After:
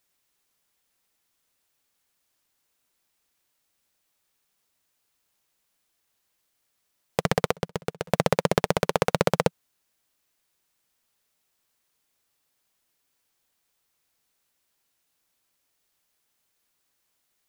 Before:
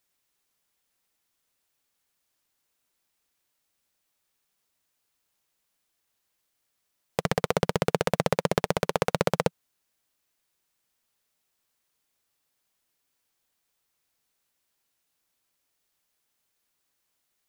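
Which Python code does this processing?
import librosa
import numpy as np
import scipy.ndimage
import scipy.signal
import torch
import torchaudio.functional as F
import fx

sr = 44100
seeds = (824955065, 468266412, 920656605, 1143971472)

y = fx.auto_swell(x, sr, attack_ms=147.0, at=(7.5, 8.08), fade=0.02)
y = y * 10.0 ** (2.5 / 20.0)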